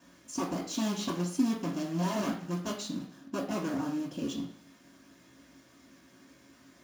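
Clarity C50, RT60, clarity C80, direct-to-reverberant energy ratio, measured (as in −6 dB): 6.5 dB, 0.55 s, 10.0 dB, −6.5 dB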